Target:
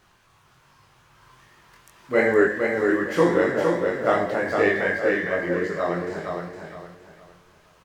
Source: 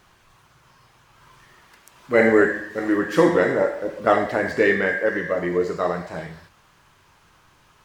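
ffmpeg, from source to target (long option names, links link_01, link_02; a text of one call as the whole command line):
ffmpeg -i in.wav -filter_complex "[0:a]flanger=delay=19.5:depth=4:speed=2.6,asplit=2[link_01][link_02];[link_02]aecho=0:1:462|924|1386|1848:0.596|0.179|0.0536|0.0161[link_03];[link_01][link_03]amix=inputs=2:normalize=0" out.wav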